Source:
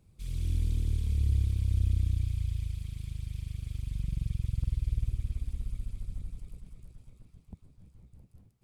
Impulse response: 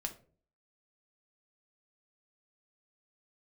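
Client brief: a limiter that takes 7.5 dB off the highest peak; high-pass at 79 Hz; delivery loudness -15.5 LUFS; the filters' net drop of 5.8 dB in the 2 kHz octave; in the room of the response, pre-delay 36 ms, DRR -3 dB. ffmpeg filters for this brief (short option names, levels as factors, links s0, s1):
-filter_complex "[0:a]highpass=79,equalizer=f=2000:t=o:g=-7.5,alimiter=level_in=1.88:limit=0.0631:level=0:latency=1,volume=0.531,asplit=2[s0][s1];[1:a]atrim=start_sample=2205,adelay=36[s2];[s1][s2]afir=irnorm=-1:irlink=0,volume=1.5[s3];[s0][s3]amix=inputs=2:normalize=0,volume=10.6"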